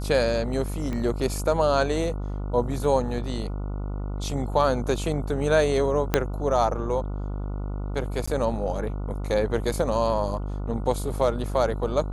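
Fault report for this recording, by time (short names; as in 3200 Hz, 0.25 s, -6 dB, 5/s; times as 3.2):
buzz 50 Hz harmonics 29 -30 dBFS
0.93 pop -19 dBFS
6.14 pop -5 dBFS
8.26–8.28 gap 15 ms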